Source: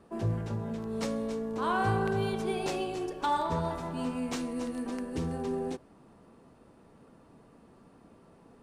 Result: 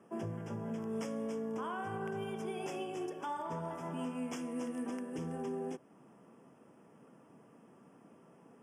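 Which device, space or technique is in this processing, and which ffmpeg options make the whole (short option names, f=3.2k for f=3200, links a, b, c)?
PA system with an anti-feedback notch: -af "highpass=f=130:w=0.5412,highpass=f=130:w=1.3066,asuperstop=centerf=4100:order=12:qfactor=2.8,alimiter=level_in=4dB:limit=-24dB:level=0:latency=1:release=301,volume=-4dB,volume=-2.5dB"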